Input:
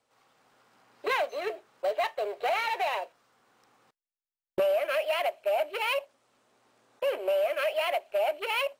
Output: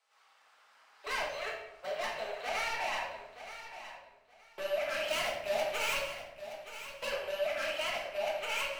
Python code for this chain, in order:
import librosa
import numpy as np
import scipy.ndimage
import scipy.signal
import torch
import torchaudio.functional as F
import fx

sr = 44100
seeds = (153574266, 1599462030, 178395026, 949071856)

p1 = scipy.signal.sosfilt(scipy.signal.butter(2, 1100.0, 'highpass', fs=sr, output='sos'), x)
p2 = fx.high_shelf(p1, sr, hz=8800.0, db=-9.5)
p3 = fx.leveller(p2, sr, passes=2, at=(5.03, 7.1))
p4 = 10.0 ** (-35.5 / 20.0) * np.tanh(p3 / 10.0 ** (-35.5 / 20.0))
p5 = p4 + fx.echo_feedback(p4, sr, ms=923, feedback_pct=20, wet_db=-12.0, dry=0)
y = fx.room_shoebox(p5, sr, seeds[0], volume_m3=270.0, walls='mixed', distance_m=1.5)